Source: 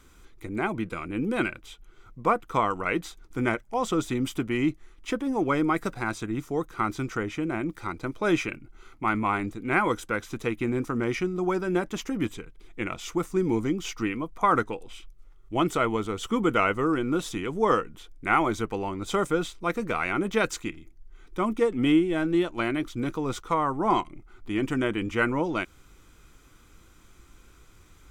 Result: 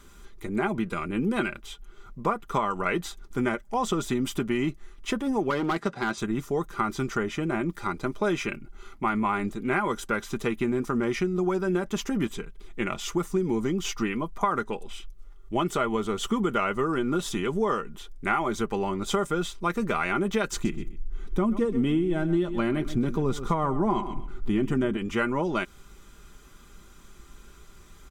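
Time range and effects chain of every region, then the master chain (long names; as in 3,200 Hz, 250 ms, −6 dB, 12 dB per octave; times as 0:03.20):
0:05.50–0:06.18: band-pass filter 140–5,500 Hz + hard clipping −21 dBFS
0:20.52–0:24.97: low-shelf EQ 430 Hz +11 dB + repeating echo 128 ms, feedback 17%, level −15 dB
whole clip: parametric band 2,300 Hz −4.5 dB 0.23 octaves; comb filter 5 ms, depth 48%; downward compressor, threshold −25 dBFS; level +3 dB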